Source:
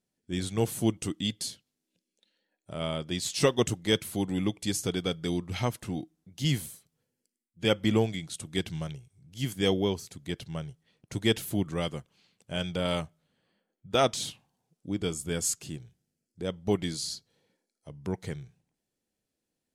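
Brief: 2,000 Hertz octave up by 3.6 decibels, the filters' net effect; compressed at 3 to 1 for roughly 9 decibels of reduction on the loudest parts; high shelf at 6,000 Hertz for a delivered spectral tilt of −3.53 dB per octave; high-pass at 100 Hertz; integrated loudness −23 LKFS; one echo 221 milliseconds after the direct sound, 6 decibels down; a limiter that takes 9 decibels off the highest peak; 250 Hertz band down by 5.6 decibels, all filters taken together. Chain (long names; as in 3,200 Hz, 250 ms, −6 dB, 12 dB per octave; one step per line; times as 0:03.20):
high-pass filter 100 Hz
parametric band 250 Hz −8 dB
parametric band 2,000 Hz +3.5 dB
high-shelf EQ 6,000 Hz +8 dB
downward compressor 3 to 1, threshold −31 dBFS
brickwall limiter −25.5 dBFS
single-tap delay 221 ms −6 dB
level +14.5 dB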